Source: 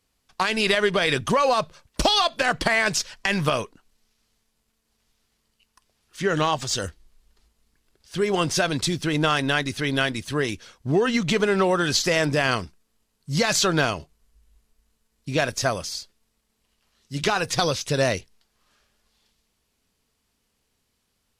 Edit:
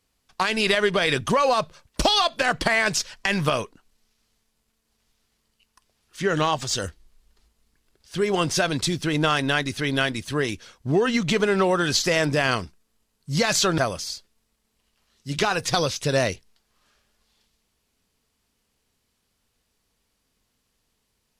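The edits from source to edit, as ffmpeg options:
ffmpeg -i in.wav -filter_complex "[0:a]asplit=2[link_01][link_02];[link_01]atrim=end=13.782[link_03];[link_02]atrim=start=15.628[link_04];[link_03][link_04]acrossfade=duration=0.004:curve1=hsin:curve2=hsin" out.wav

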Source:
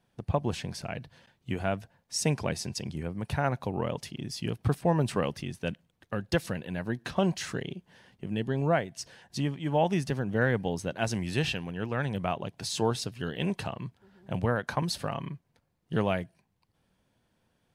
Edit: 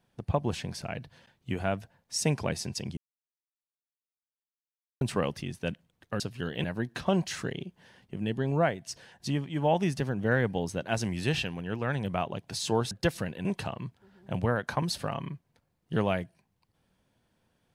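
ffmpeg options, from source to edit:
ffmpeg -i in.wav -filter_complex "[0:a]asplit=7[link_01][link_02][link_03][link_04][link_05][link_06][link_07];[link_01]atrim=end=2.97,asetpts=PTS-STARTPTS,afade=type=out:start_time=2.966:duration=0.004:curve=hsin[link_08];[link_02]atrim=start=2.97:end=5.01,asetpts=PTS-STARTPTS,volume=0[link_09];[link_03]atrim=start=5.01:end=6.202,asetpts=PTS-STARTPTS,afade=type=in:duration=0.004:curve=hsin[link_10];[link_04]atrim=start=13.008:end=13.452[link_11];[link_05]atrim=start=6.738:end=13.012[link_12];[link_06]atrim=start=6.198:end=6.742[link_13];[link_07]atrim=start=13.448[link_14];[link_08][link_09][link_10]concat=n=3:v=0:a=1[link_15];[link_15][link_11]acrossfade=duration=0.004:curve1=hsin:curve2=hsin[link_16];[link_16][link_12]acrossfade=duration=0.004:curve1=hsin:curve2=hsin[link_17];[link_17][link_13]acrossfade=duration=0.004:curve1=hsin:curve2=hsin[link_18];[link_18][link_14]acrossfade=duration=0.004:curve1=hsin:curve2=hsin" out.wav

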